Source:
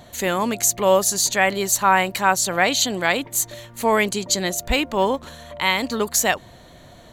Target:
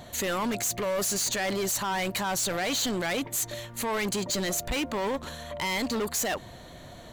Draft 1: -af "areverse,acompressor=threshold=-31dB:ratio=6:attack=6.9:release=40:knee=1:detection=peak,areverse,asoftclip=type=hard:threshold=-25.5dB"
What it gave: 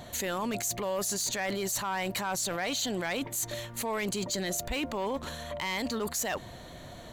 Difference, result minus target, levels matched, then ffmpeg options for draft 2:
compressor: peak gain reduction +7 dB
-af "areverse,acompressor=threshold=-22.5dB:ratio=6:attack=6.9:release=40:knee=1:detection=peak,areverse,asoftclip=type=hard:threshold=-25.5dB"

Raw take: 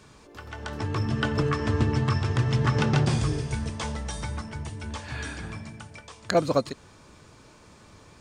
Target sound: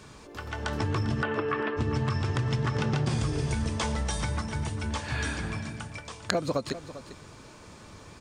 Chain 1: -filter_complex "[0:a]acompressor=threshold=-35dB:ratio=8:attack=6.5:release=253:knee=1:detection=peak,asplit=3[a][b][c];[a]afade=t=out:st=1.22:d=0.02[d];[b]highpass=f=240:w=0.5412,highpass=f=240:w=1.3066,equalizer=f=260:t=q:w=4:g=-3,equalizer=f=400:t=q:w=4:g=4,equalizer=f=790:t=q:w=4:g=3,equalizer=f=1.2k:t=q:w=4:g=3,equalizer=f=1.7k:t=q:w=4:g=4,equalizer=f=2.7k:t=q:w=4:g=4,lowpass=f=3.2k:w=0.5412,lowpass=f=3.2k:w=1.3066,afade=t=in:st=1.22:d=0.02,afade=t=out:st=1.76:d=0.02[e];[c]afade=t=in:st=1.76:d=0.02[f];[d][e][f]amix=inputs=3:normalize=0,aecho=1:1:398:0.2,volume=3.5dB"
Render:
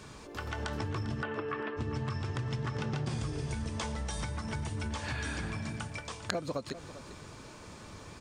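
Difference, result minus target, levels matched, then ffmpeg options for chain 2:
compressor: peak gain reduction +7 dB
-filter_complex "[0:a]acompressor=threshold=-27dB:ratio=8:attack=6.5:release=253:knee=1:detection=peak,asplit=3[a][b][c];[a]afade=t=out:st=1.22:d=0.02[d];[b]highpass=f=240:w=0.5412,highpass=f=240:w=1.3066,equalizer=f=260:t=q:w=4:g=-3,equalizer=f=400:t=q:w=4:g=4,equalizer=f=790:t=q:w=4:g=3,equalizer=f=1.2k:t=q:w=4:g=3,equalizer=f=1.7k:t=q:w=4:g=4,equalizer=f=2.7k:t=q:w=4:g=4,lowpass=f=3.2k:w=0.5412,lowpass=f=3.2k:w=1.3066,afade=t=in:st=1.22:d=0.02,afade=t=out:st=1.76:d=0.02[e];[c]afade=t=in:st=1.76:d=0.02[f];[d][e][f]amix=inputs=3:normalize=0,aecho=1:1:398:0.2,volume=3.5dB"

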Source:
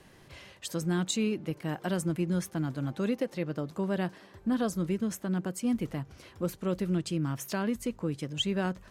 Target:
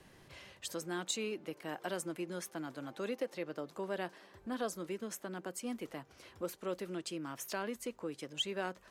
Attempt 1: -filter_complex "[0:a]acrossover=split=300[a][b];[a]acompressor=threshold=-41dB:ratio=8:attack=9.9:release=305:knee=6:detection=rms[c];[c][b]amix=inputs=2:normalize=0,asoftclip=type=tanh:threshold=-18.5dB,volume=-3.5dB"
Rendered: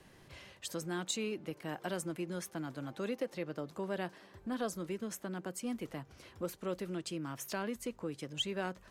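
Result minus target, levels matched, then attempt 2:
compressor: peak gain reduction -9.5 dB
-filter_complex "[0:a]acrossover=split=300[a][b];[a]acompressor=threshold=-52dB:ratio=8:attack=9.9:release=305:knee=6:detection=rms[c];[c][b]amix=inputs=2:normalize=0,asoftclip=type=tanh:threshold=-18.5dB,volume=-3.5dB"

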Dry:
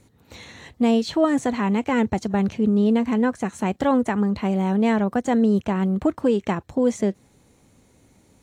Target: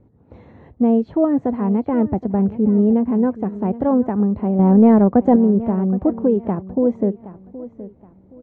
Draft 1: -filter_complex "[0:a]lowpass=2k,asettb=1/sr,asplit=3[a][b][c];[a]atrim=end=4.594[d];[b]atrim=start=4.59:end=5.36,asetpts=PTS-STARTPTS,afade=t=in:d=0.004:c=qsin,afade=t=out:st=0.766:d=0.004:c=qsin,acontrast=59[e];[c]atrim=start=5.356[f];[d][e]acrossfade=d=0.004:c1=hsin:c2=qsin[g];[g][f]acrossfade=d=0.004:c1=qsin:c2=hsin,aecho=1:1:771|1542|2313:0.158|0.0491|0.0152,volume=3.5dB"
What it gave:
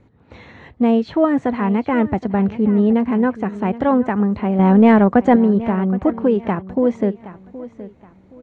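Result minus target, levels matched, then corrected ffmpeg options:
2000 Hz band +13.5 dB
-filter_complex "[0:a]lowpass=700,asettb=1/sr,asplit=3[a][b][c];[a]atrim=end=4.594[d];[b]atrim=start=4.59:end=5.36,asetpts=PTS-STARTPTS,afade=t=in:d=0.004:c=qsin,afade=t=out:st=0.766:d=0.004:c=qsin,acontrast=59[e];[c]atrim=start=5.356[f];[d][e]acrossfade=d=0.004:c1=hsin:c2=qsin[g];[g][f]acrossfade=d=0.004:c1=qsin:c2=hsin,aecho=1:1:771|1542|2313:0.158|0.0491|0.0152,volume=3.5dB"

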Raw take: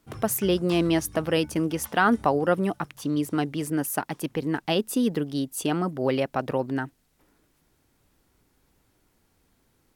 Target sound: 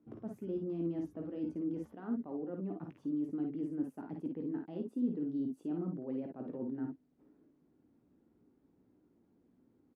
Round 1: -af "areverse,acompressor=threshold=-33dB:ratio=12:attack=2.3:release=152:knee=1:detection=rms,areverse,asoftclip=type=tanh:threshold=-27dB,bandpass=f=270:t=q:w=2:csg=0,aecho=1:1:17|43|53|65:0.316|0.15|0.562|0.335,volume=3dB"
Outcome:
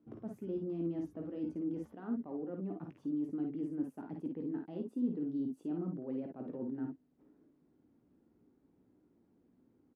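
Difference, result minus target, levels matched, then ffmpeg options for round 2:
soft clip: distortion +18 dB
-af "areverse,acompressor=threshold=-33dB:ratio=12:attack=2.3:release=152:knee=1:detection=rms,areverse,asoftclip=type=tanh:threshold=-17.5dB,bandpass=f=270:t=q:w=2:csg=0,aecho=1:1:17|43|53|65:0.316|0.15|0.562|0.335,volume=3dB"

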